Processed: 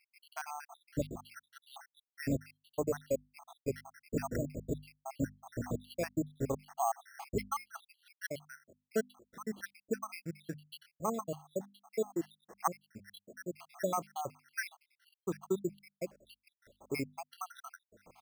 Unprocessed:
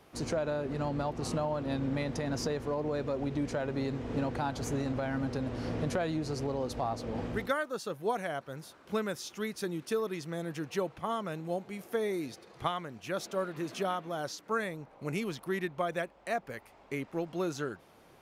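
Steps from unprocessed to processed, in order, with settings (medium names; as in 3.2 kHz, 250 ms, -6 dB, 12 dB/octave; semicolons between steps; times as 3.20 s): random holes in the spectrogram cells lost 82%; careless resampling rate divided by 6×, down filtered, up hold; hum notches 50/100/150/200/250 Hz; trim +3 dB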